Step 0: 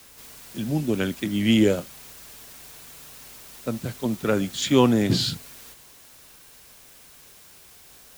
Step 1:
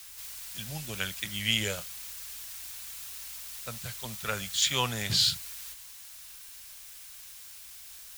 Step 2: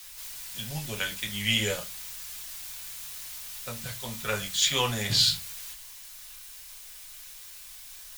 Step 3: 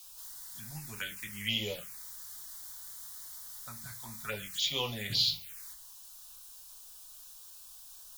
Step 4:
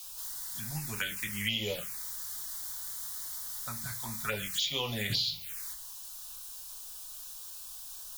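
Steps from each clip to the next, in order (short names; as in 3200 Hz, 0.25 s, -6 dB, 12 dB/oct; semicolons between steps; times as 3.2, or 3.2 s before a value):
passive tone stack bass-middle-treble 10-0-10; gain +3.5 dB
reverb RT60 0.25 s, pre-delay 4 ms, DRR 1 dB
low shelf 170 Hz -5.5 dB; envelope phaser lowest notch 290 Hz, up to 1600 Hz, full sweep at -24 dBFS; gain -5 dB
compressor 6:1, threshold -35 dBFS, peak gain reduction 10.5 dB; gain +6.5 dB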